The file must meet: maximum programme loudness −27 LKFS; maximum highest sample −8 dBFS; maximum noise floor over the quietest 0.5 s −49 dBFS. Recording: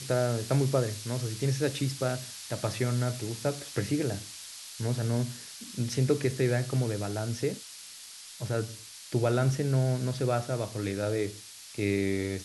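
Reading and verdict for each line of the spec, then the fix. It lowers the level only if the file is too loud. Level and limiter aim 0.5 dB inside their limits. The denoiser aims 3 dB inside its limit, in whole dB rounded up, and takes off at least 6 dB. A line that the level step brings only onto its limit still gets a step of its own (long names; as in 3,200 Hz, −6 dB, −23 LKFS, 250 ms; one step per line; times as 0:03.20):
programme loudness −30.5 LKFS: in spec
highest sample −13.5 dBFS: in spec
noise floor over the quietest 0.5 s −47 dBFS: out of spec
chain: broadband denoise 6 dB, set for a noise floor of −47 dBFS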